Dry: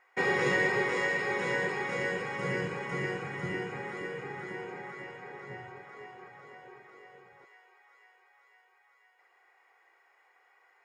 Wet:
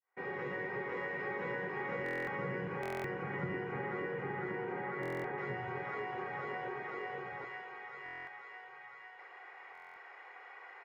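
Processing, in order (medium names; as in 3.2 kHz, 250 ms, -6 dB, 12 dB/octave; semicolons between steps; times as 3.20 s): fade-in on the opening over 3.60 s; low-pass 1.9 kHz 12 dB/octave, from 5.38 s 3.3 kHz; compression 6:1, threshold -50 dBFS, peak gain reduction 17 dB; feedback delay 793 ms, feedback 31%, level -15 dB; reverberation RT60 0.75 s, pre-delay 157 ms, DRR 18 dB; buffer glitch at 2.04/2.81/5.01/8.04/9.73 s, samples 1024, times 9; trim +13 dB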